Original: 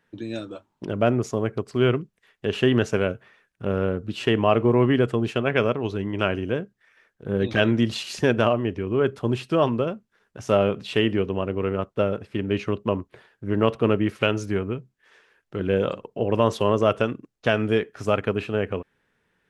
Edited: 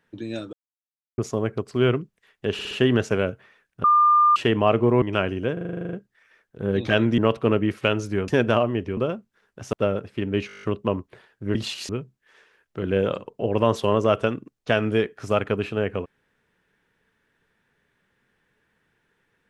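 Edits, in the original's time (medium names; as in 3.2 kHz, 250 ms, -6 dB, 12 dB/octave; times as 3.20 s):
0.53–1.18 s: mute
2.53 s: stutter 0.06 s, 4 plays
3.66–4.18 s: bleep 1.2 kHz -13 dBFS
4.84–6.08 s: delete
6.59 s: stutter 0.04 s, 11 plays
7.84–8.18 s: swap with 13.56–14.66 s
8.87–9.75 s: delete
10.51–11.90 s: delete
12.64 s: stutter 0.02 s, 9 plays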